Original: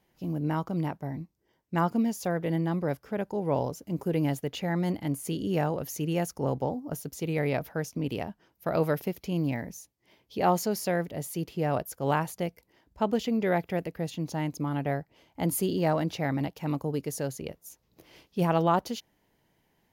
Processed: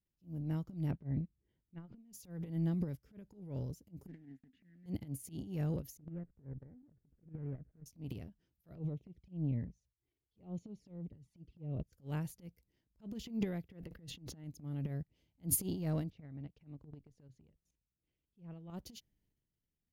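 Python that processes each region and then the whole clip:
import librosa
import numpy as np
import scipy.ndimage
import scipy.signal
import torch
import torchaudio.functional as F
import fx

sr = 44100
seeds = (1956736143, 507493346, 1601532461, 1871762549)

y = fx.chain(x, sr, fx.lowpass(hz=3600.0, slope=24),
    fx.over_compress(threshold_db=-31.0, ratio=-0.5), at=(0.91, 2.13))
y = fx.chain(y, sr, fx.block_float(bits=3),
    fx.double_bandpass(hz=680.0, octaves=2.8),
    fx.tilt_eq(slope=-2.0), at=(4.07, 4.86))
y = fx.chain(y, sr, fx.median_filter(points=41),
    fx.cheby1_lowpass(hz=1700.0, order=3),
    fx.level_steps(step_db=15), at=(5.97, 7.86))
y = fx.chain(y, sr, fx.env_flanger(rest_ms=2.9, full_db=-25.5),
    fx.spacing_loss(db_at_10k=28), at=(8.75, 11.93))
y = fx.chain(y, sr, fx.bass_treble(bass_db=-4, treble_db=-10),
    fx.notch(hz=2400.0, q=8.2),
    fx.sustainer(db_per_s=68.0), at=(13.68, 14.44))
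y = fx.chain(y, sr, fx.level_steps(step_db=16),
    fx.lowpass(hz=2800.0, slope=12), at=(16.1, 18.7))
y = fx.tone_stack(y, sr, knobs='10-0-1')
y = fx.transient(y, sr, attack_db=-11, sustain_db=10)
y = fx.upward_expand(y, sr, threshold_db=-54.0, expansion=2.5)
y = y * librosa.db_to_amplitude(14.0)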